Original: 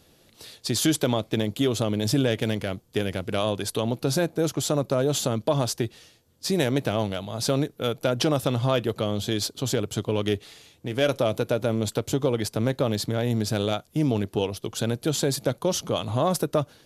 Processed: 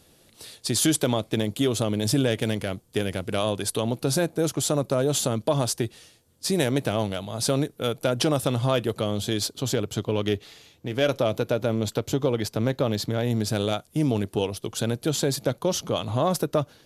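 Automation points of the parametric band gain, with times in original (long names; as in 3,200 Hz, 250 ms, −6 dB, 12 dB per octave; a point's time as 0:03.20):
parametric band 9,300 Hz 0.53 octaves
0:09.18 +6.5 dB
0:10.03 −5 dB
0:12.99 −5 dB
0:13.75 +6.5 dB
0:14.36 +6.5 dB
0:15.42 −2 dB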